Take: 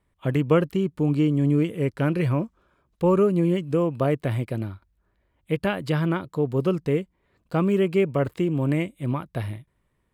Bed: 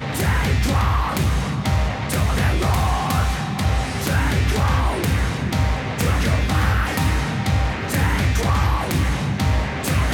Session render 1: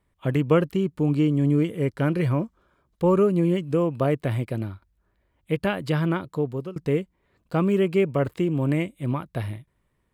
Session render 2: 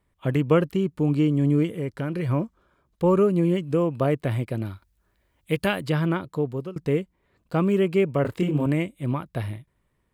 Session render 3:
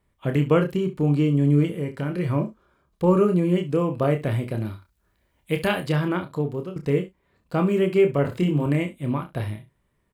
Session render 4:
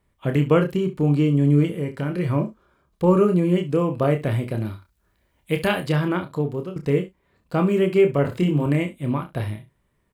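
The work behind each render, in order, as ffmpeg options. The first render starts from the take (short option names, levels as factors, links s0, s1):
-filter_complex "[0:a]asettb=1/sr,asplit=3[s0][s1][s2];[s0]atrim=end=1.464[s3];[s1]atrim=start=1.46:end=3.15,asetpts=PTS-STARTPTS,afade=t=in:d=0.004:c=qsin,afade=t=out:st=1.686:d=0.004:c=qsin,bandreject=f=2600:w=12[s4];[s2]atrim=start=3.146[s5];[s3][s4]acrossfade=d=0.004:c1=hsin:c2=qsin[s6];[s6][s5]acrossfade=d=0.004:c1=qsin:c2=hsin,asplit=2[s7][s8];[s7]atrim=end=6.76,asetpts=PTS-STARTPTS,afade=t=out:st=6.35:d=0.41:silence=0.0707946[s9];[s8]atrim=start=6.76,asetpts=PTS-STARTPTS,afade=t=in:d=0.004:c=hsin:silence=0.0707946[s10];[s9][s10]concat=n=2:v=0:a=1"
-filter_complex "[0:a]asettb=1/sr,asplit=3[s0][s1][s2];[s0]atrim=end=1.764[s3];[s1]atrim=start=1.76:end=2.29,asetpts=PTS-STARTPTS,afade=t=in:d=0.004:c=qsin,afade=t=out:st=0.526:d=0.004:c=qsin,acompressor=threshold=0.0562:ratio=3:attack=3.2:release=140:knee=1:detection=peak[s4];[s2]atrim=start=2.286[s5];[s3][s4]acrossfade=d=0.004:c1=hsin:c2=qsin[s6];[s6][s5]acrossfade=d=0.004:c1=qsin:c2=hsin,asettb=1/sr,asplit=3[s7][s8][s9];[s7]atrim=end=4.654[s10];[s8]atrim=start=4.65:end=5.81,asetpts=PTS-STARTPTS,afade=t=in:d=0.004:c=qsin,afade=t=out:st=1.156:d=0.004:c=qsin,highshelf=f=2800:g=9.5[s11];[s9]atrim=start=5.806[s12];[s10][s11]acrossfade=d=0.004:c1=hsin:c2=qsin[s13];[s13][s12]acrossfade=d=0.004:c1=qsin:c2=hsin,asettb=1/sr,asplit=3[s14][s15][s16];[s14]atrim=end=8.224[s17];[s15]atrim=start=8.22:end=8.66,asetpts=PTS-STARTPTS,afade=t=in:d=0.004:c=qsin,afade=t=out:st=0.436:d=0.004:c=qsin,asplit=2[s18][s19];[s19]adelay=27,volume=0.794[s20];[s18][s20]amix=inputs=2:normalize=0,atrim=end_sample=19404[s21];[s16]atrim=start=8.656[s22];[s17][s21]acrossfade=d=0.004:c1=hsin:c2=qsin[s23];[s23][s22]acrossfade=d=0.004:c1=qsin:c2=hsin"
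-filter_complex "[0:a]asplit=2[s0][s1];[s1]adelay=33,volume=0.251[s2];[s0][s2]amix=inputs=2:normalize=0,aecho=1:1:28|69:0.422|0.168"
-af "volume=1.19"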